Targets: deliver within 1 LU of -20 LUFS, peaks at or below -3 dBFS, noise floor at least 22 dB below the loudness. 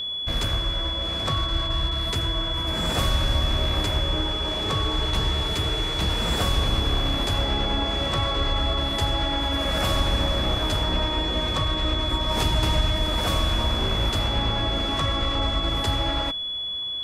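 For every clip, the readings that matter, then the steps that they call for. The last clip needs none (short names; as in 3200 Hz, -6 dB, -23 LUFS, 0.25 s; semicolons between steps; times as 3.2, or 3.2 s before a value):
steady tone 3400 Hz; tone level -27 dBFS; loudness -24.0 LUFS; peak -10.5 dBFS; loudness target -20.0 LUFS
-> notch 3400 Hz, Q 30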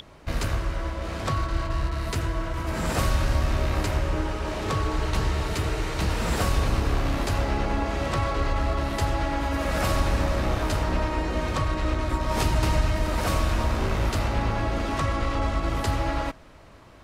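steady tone none; loudness -26.5 LUFS; peak -12.0 dBFS; loudness target -20.0 LUFS
-> gain +6.5 dB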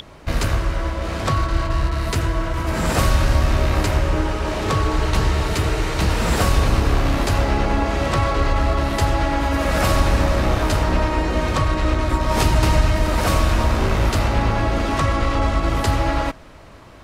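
loudness -20.0 LUFS; peak -5.5 dBFS; noise floor -42 dBFS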